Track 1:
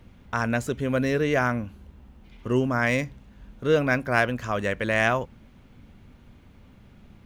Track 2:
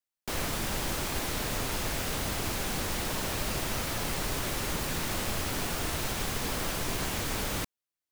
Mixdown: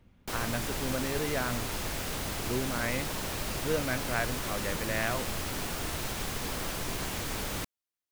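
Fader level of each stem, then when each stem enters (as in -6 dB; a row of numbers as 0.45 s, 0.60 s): -10.0 dB, -2.5 dB; 0.00 s, 0.00 s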